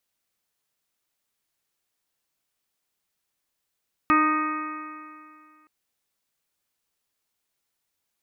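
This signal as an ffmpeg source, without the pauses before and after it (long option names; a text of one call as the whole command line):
ffmpeg -f lavfi -i "aevalsrc='0.0944*pow(10,-3*t/2.25)*sin(2*PI*306.18*t)+0.0133*pow(10,-3*t/2.25)*sin(2*PI*613.47*t)+0.0299*pow(10,-3*t/2.25)*sin(2*PI*922.94*t)+0.15*pow(10,-3*t/2.25)*sin(2*PI*1235.69*t)+0.0237*pow(10,-3*t/2.25)*sin(2*PI*1552.78*t)+0.0447*pow(10,-3*t/2.25)*sin(2*PI*1875.24*t)+0.0237*pow(10,-3*t/2.25)*sin(2*PI*2204.08*t)+0.0355*pow(10,-3*t/2.25)*sin(2*PI*2540.26*t)':duration=1.57:sample_rate=44100" out.wav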